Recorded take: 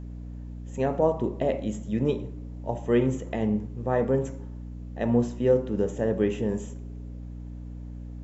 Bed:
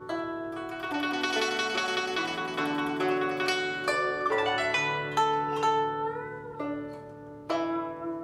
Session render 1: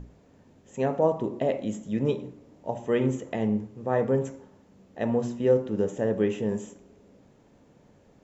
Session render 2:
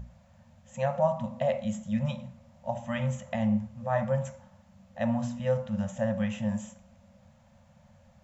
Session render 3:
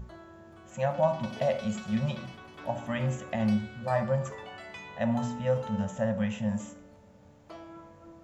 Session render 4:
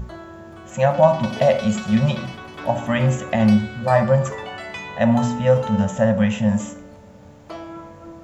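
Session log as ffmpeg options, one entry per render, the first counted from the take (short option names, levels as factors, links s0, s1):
-af "bandreject=f=60:t=h:w=6,bandreject=f=120:t=h:w=6,bandreject=f=180:t=h:w=6,bandreject=f=240:t=h:w=6,bandreject=f=300:t=h:w=6,bandreject=f=360:t=h:w=6"
-af "afftfilt=real='re*(1-between(b*sr/4096,240,510))':imag='im*(1-between(b*sr/4096,240,510))':win_size=4096:overlap=0.75,equalizer=f=84:t=o:w=0.38:g=9.5"
-filter_complex "[1:a]volume=0.141[s0];[0:a][s0]amix=inputs=2:normalize=0"
-af "volume=3.76"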